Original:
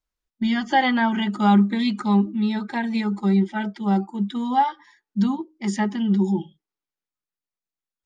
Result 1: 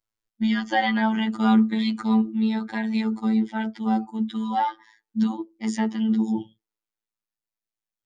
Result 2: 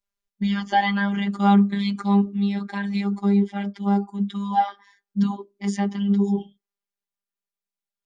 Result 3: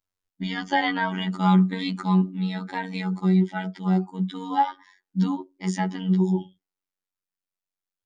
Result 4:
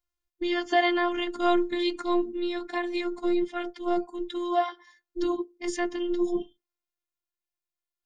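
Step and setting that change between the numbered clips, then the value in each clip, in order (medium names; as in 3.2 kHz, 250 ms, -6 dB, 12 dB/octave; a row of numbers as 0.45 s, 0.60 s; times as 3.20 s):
robot voice, frequency: 110 Hz, 200 Hz, 93 Hz, 350 Hz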